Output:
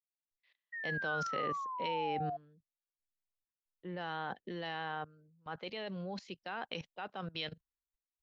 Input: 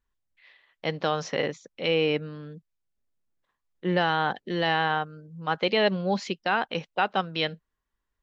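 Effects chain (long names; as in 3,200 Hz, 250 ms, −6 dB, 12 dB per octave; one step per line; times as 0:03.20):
output level in coarse steps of 19 dB
sound drawn into the spectrogram fall, 0:00.72–0:02.37, 690–1,900 Hz −37 dBFS
multiband upward and downward expander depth 70%
level −1.5 dB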